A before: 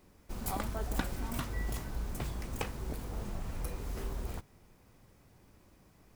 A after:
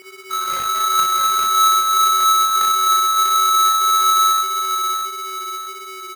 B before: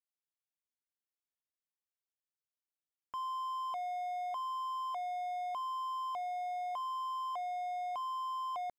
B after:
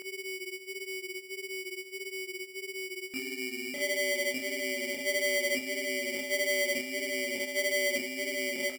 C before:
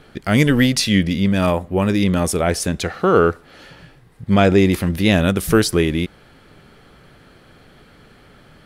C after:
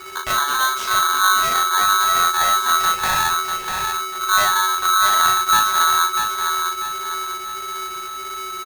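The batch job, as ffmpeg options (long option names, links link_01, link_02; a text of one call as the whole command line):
ffmpeg -i in.wav -filter_complex "[0:a]acrossover=split=110[link_01][link_02];[link_01]aeval=exprs='abs(val(0))':channel_layout=same[link_03];[link_03][link_02]amix=inputs=2:normalize=0,aemphasis=mode=reproduction:type=75fm,acompressor=threshold=-29dB:ratio=3,lowshelf=frequency=77:gain=10,asplit=2[link_04][link_05];[link_05]adelay=36,volume=-4.5dB[link_06];[link_04][link_06]amix=inputs=2:normalize=0,aecho=1:1:644|1288|1932|2576|3220:0.531|0.207|0.0807|0.0315|0.0123,aeval=exprs='val(0)+0.0112*sin(2*PI*920*n/s)':channel_layout=same,flanger=delay=20:depth=4:speed=1.6,aeval=exprs='val(0)*sgn(sin(2*PI*1300*n/s))':channel_layout=same,volume=5dB" out.wav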